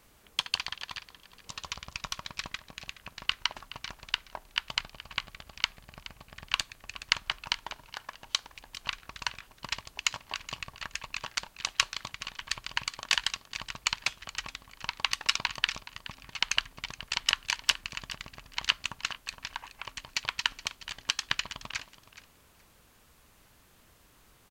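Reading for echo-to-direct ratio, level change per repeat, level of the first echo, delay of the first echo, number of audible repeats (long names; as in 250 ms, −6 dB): −16.0 dB, −15.5 dB, −16.0 dB, 422 ms, 2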